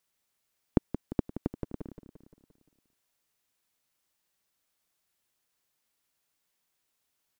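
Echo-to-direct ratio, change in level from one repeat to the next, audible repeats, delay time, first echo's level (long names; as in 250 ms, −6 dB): −9.5 dB, −5.0 dB, 5, 174 ms, −11.0 dB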